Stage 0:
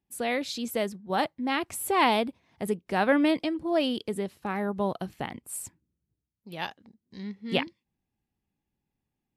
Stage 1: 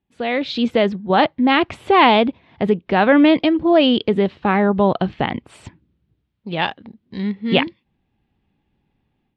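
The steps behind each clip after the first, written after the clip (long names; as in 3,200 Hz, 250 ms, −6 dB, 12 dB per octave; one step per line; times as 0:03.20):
Chebyshev low-pass filter 3,500 Hz, order 3
automatic gain control gain up to 10.5 dB
in parallel at +1.5 dB: brickwall limiter −13.5 dBFS, peak gain reduction 11.5 dB
on the sum: level −1.5 dB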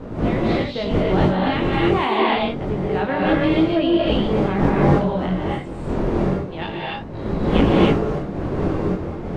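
wind on the microphone 360 Hz −16 dBFS
chorus effect 0.27 Hz, delay 18 ms, depth 5.3 ms
reverb whose tail is shaped and stops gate 320 ms rising, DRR −4.5 dB
level −8 dB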